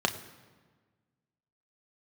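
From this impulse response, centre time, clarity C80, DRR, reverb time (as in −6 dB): 12 ms, 14.0 dB, 5.0 dB, 1.5 s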